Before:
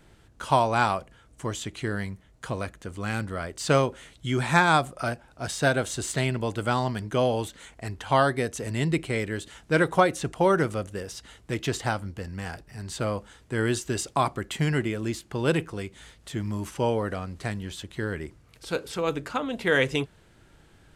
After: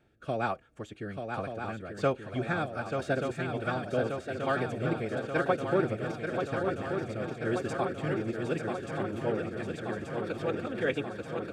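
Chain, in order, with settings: tone controls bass -3 dB, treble -12 dB; comb of notches 1 kHz; rotary cabinet horn 0.7 Hz, later 5.5 Hz, at 14.34 s; time stretch by phase-locked vocoder 0.55×; on a send: shuffle delay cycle 1181 ms, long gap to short 3:1, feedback 71%, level -6 dB; on the sum: trim -2.5 dB

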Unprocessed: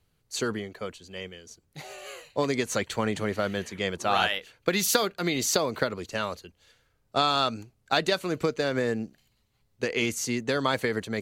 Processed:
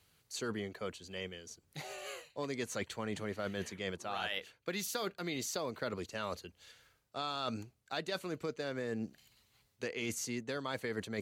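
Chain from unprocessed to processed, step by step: high-pass 45 Hz; reverse; compression 6:1, threshold -32 dBFS, peak gain reduction 14.5 dB; reverse; tape noise reduction on one side only encoder only; trim -3 dB

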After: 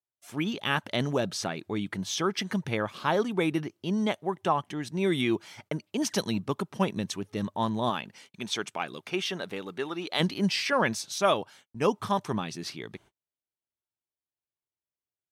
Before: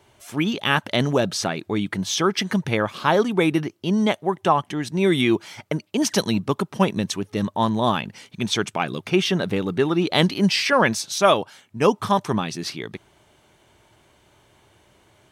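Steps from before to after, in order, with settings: gate -46 dBFS, range -40 dB; 7.89–10.19 s: high-pass 250 Hz -> 740 Hz 6 dB/octave; trim -7.5 dB

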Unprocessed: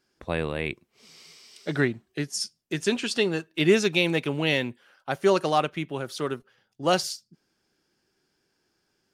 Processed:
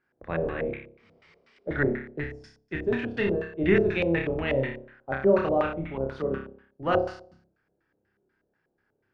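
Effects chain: octave divider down 1 oct, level -3 dB; flutter echo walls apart 5.1 m, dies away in 0.55 s; LFO low-pass square 4.1 Hz 580–1800 Hz; trim -6 dB

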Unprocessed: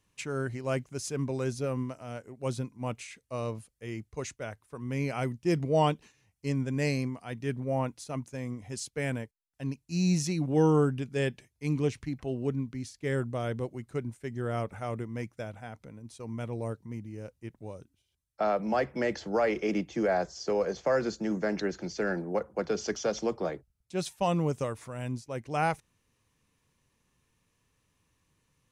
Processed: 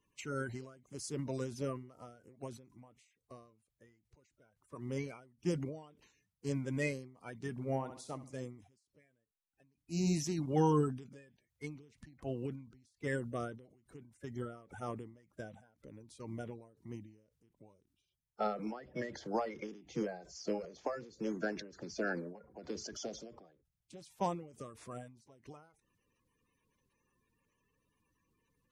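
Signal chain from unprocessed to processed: coarse spectral quantiser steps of 30 dB; 7.51–8.40 s: flutter echo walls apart 11.5 m, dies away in 0.37 s; endings held to a fixed fall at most 100 dB/s; trim -5 dB

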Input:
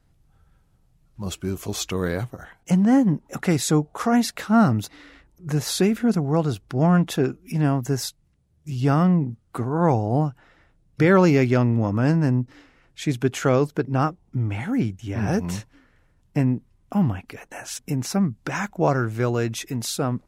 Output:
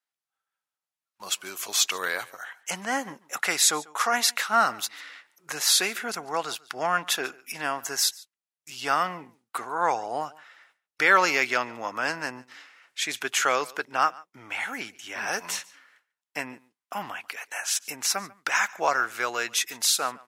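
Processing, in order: high-pass 1.2 kHz 12 dB/octave; gate with hold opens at -54 dBFS; delay 143 ms -22.5 dB; trim +7 dB

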